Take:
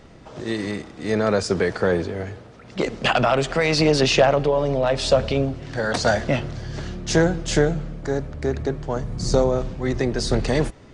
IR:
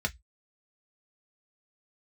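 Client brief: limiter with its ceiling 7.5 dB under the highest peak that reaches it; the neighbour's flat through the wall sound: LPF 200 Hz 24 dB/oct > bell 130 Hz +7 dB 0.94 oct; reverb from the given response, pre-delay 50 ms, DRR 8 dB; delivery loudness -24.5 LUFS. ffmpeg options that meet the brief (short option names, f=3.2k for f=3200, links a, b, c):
-filter_complex "[0:a]alimiter=limit=-12dB:level=0:latency=1,asplit=2[a][b];[1:a]atrim=start_sample=2205,adelay=50[c];[b][c]afir=irnorm=-1:irlink=0,volume=-14.5dB[d];[a][d]amix=inputs=2:normalize=0,lowpass=f=200:w=0.5412,lowpass=f=200:w=1.3066,equalizer=f=130:t=o:w=0.94:g=7,volume=0.5dB"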